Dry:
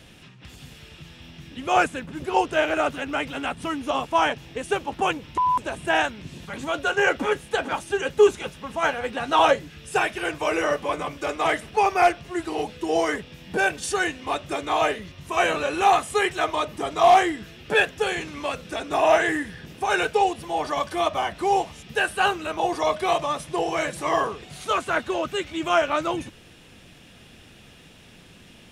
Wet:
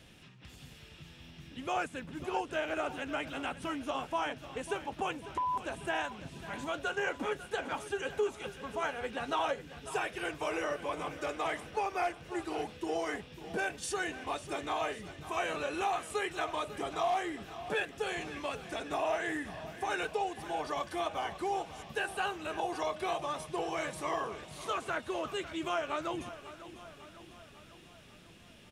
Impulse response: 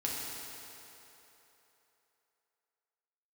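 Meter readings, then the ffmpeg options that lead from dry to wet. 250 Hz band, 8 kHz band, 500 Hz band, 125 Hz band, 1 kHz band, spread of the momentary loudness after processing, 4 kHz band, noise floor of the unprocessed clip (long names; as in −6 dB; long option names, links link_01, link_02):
−10.0 dB, −10.0 dB, −12.0 dB, −9.5 dB, −12.5 dB, 16 LU, −11.5 dB, −49 dBFS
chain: -filter_complex "[0:a]acompressor=threshold=-24dB:ratio=2.5,asplit=2[link_01][link_02];[link_02]aecho=0:1:547|1094|1641|2188|2735|3282:0.2|0.114|0.0648|0.037|0.0211|0.012[link_03];[link_01][link_03]amix=inputs=2:normalize=0,volume=-8dB"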